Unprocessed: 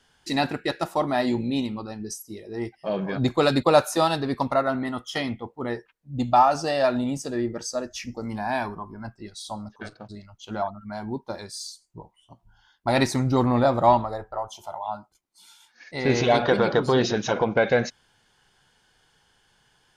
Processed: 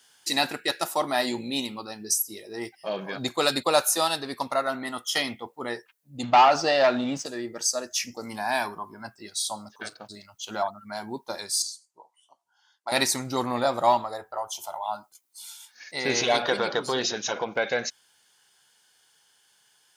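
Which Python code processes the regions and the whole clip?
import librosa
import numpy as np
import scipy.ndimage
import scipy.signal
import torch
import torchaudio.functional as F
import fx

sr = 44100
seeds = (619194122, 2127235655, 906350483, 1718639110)

y = fx.chain(x, sr, fx.leveller(passes=2),
    fx.air_absorb(metres=190.0), at=(6.23, 7.26))
y = fx.chain(y, sr, fx.bandpass_edges(low_hz=700.0, high_hz=6700.0),
    fx.peak_eq(hz=2800.0, db=-8.0, octaves=2.4), at=(11.62, 12.92))
y = scipy.signal.sosfilt(scipy.signal.butter(2, 60.0, 'highpass', fs=sr, output='sos'), y)
y = fx.riaa(y, sr, side='recording')
y = fx.rider(y, sr, range_db=5, speed_s=2.0)
y = y * librosa.db_to_amplitude(-3.0)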